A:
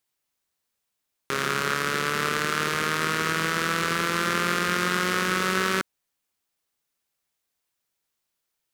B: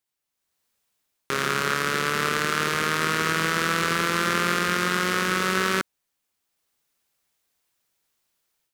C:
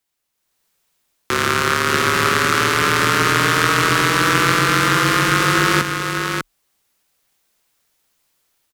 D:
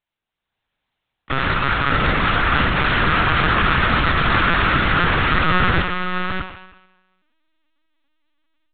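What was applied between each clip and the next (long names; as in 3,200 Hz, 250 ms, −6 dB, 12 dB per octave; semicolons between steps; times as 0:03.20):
automatic gain control gain up to 10 dB; level −4.5 dB
single-tap delay 597 ms −5.5 dB; frequency shifter −36 Hz; level +7 dB
in parallel at −9 dB: slack as between gear wheels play −31 dBFS; on the sum: convolution reverb RT60 1.1 s, pre-delay 12 ms, DRR 5.5 dB; linear-prediction vocoder at 8 kHz pitch kept; level −4 dB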